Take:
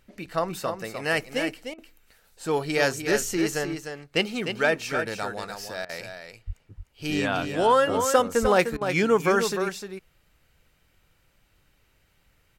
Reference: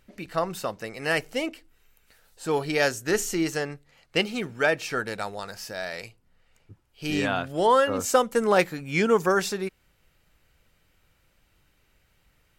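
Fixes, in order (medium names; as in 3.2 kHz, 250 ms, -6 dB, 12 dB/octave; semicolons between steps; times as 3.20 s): 6.46–6.58 s: high-pass 140 Hz 24 dB/octave; 8.41–8.53 s: high-pass 140 Hz 24 dB/octave; interpolate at 1.74/5.85/8.77 s, 41 ms; inverse comb 303 ms -7.5 dB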